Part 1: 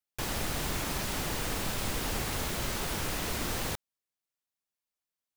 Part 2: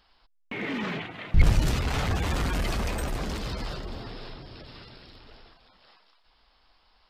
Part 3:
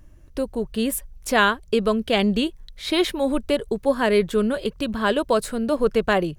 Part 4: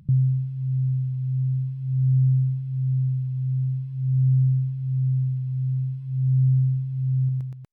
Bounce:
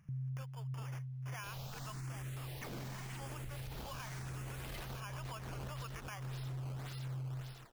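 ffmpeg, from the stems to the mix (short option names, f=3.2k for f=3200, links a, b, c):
-filter_complex "[0:a]alimiter=level_in=2.5dB:limit=-24dB:level=0:latency=1:release=334,volume=-2.5dB,asplit=2[a][b];[b]afreqshift=0.89[c];[a][c]amix=inputs=2:normalize=1,adelay=1250,volume=-8dB[d];[1:a]tiltshelf=f=970:g=-3.5,acompressor=threshold=-34dB:ratio=6,acrusher=samples=14:mix=1:aa=0.000001:lfo=1:lforange=22.4:lforate=1.8,adelay=2100,volume=-3.5dB[e];[2:a]deesser=0.9,highpass=f=960:w=0.5412,highpass=f=960:w=1.3066,acrusher=samples=11:mix=1:aa=0.000001,volume=-8.5dB,asplit=2[f][g];[3:a]volume=-16dB[h];[g]apad=whole_len=405364[i];[e][i]sidechaincompress=threshold=-54dB:ratio=4:attack=43:release=150[j];[f][h]amix=inputs=2:normalize=0,alimiter=level_in=9.5dB:limit=-24dB:level=0:latency=1:release=466,volume=-9.5dB,volume=0dB[k];[d][j][k]amix=inputs=3:normalize=0,alimiter=level_in=12.5dB:limit=-24dB:level=0:latency=1:release=61,volume=-12.5dB"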